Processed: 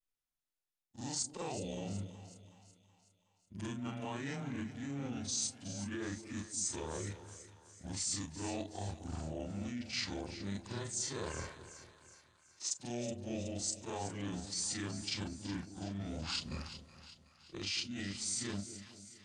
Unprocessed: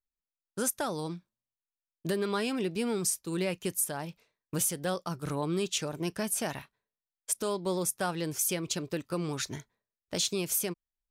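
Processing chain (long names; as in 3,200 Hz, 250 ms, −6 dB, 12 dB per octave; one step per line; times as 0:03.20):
every overlapping window played backwards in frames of 58 ms
reversed playback
downward compressor, threshold −40 dBFS, peak gain reduction 11.5 dB
reversed playback
wrong playback speed 78 rpm record played at 45 rpm
dynamic equaliser 4,100 Hz, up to +4 dB, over −53 dBFS, Q 1.2
on a send: echo with a time of its own for lows and highs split 630 Hz, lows 223 ms, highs 372 ms, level −12.5 dB
on the sum: formants moved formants +4 semitones
level +2 dB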